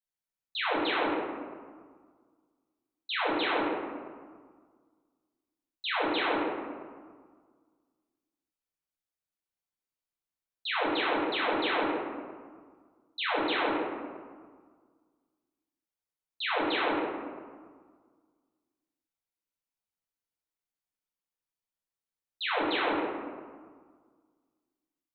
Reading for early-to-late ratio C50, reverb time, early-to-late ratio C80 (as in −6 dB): −1.5 dB, 1.7 s, 1.0 dB